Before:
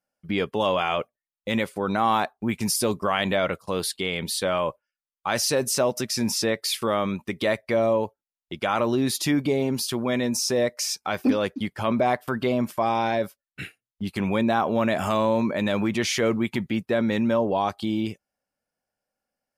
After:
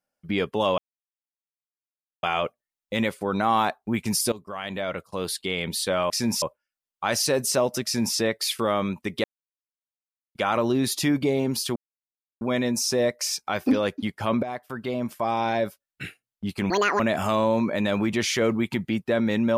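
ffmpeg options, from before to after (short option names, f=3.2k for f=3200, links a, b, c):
-filter_complex "[0:a]asplit=11[a][b][c][d][e][f][g][h][i][j][k];[a]atrim=end=0.78,asetpts=PTS-STARTPTS,afade=t=out:st=0.776:d=0.004:c=hsin,apad=pad_dur=1.45[l];[b]atrim=start=0.78:end=2.87,asetpts=PTS-STARTPTS,afade=t=in:d=0.004:c=hsin,afade=t=out:st=2.086:d=0.004:c=hsin:silence=0.141254[m];[c]atrim=start=2.87:end=4.652,asetpts=PTS-STARTPTS,afade=t=in:d=1.28:silence=0.141254[n];[d]atrim=start=6.068:end=6.392[o];[e]atrim=start=4.648:end=7.47,asetpts=PTS-STARTPTS,afade=t=out:st=2.818:d=0.004:c=hsin[p];[f]atrim=start=7.47:end=8.58,asetpts=PTS-STARTPTS,volume=0[q];[g]atrim=start=8.58:end=9.99,asetpts=PTS-STARTPTS,afade=t=in:d=0.004:c=hsin,afade=t=out:st=1.406:d=0.004:c=hsin,apad=pad_dur=0.65[r];[h]atrim=start=9.99:end=12.01,asetpts=PTS-STARTPTS,afade=t=in:d=0.004:c=hsin,afade=t=out:st=2.016:d=0.004:c=hsin:silence=0.251189[s];[i]atrim=start=12.01:end=14.284,asetpts=PTS-STARTPTS,afade=t=in:d=1.19:silence=0.251189[t];[j]atrim=start=14.28:end=14.81,asetpts=PTS-STARTPTS,asetrate=78939,aresample=44100[u];[k]atrim=start=14.806[v];[l][m][n]concat=n=3:v=0:a=1[w];[w][o]acrossfade=d=0.004:c1=hsin:c2=hsin[x];[p][q][r][s][t]concat=n=5:v=0:a=1[y];[x][y]acrossfade=d=0.004:c1=hsin:c2=hsin[z];[z][u]acrossfade=d=0.004:c1=hsin:c2=hsin[aa];[aa][v]acrossfade=d=0.004:c1=hsin:c2=hsin"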